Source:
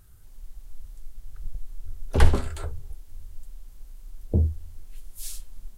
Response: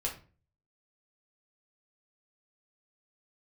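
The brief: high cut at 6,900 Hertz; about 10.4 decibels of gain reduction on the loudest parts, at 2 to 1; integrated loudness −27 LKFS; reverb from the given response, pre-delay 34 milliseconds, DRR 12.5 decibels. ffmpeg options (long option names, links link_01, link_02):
-filter_complex "[0:a]lowpass=6900,acompressor=threshold=-27dB:ratio=2,asplit=2[link_01][link_02];[1:a]atrim=start_sample=2205,adelay=34[link_03];[link_02][link_03]afir=irnorm=-1:irlink=0,volume=-15.5dB[link_04];[link_01][link_04]amix=inputs=2:normalize=0,volume=8.5dB"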